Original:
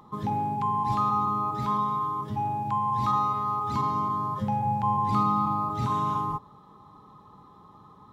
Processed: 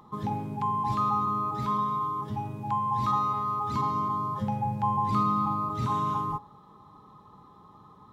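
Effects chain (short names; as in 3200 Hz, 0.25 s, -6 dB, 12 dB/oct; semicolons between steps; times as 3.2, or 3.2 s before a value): de-hum 277.3 Hz, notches 7; gain -1 dB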